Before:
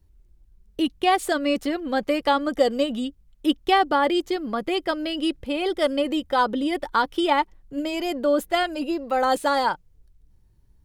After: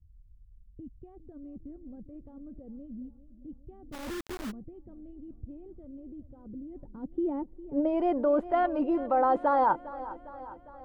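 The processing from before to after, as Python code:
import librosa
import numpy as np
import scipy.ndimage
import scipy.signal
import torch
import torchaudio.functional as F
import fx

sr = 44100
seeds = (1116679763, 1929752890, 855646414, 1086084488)

p1 = fx.over_compress(x, sr, threshold_db=-24.0, ratio=-0.5)
p2 = x + (p1 * librosa.db_to_amplitude(-1.5))
p3 = fx.filter_sweep_lowpass(p2, sr, from_hz=110.0, to_hz=1000.0, start_s=6.65, end_s=8.1, q=1.5)
p4 = p3 + fx.echo_feedback(p3, sr, ms=405, feedback_pct=59, wet_db=-16.5, dry=0)
p5 = fx.quant_companded(p4, sr, bits=2, at=(3.92, 4.5), fade=0.02)
y = p5 * librosa.db_to_amplitude(-8.0)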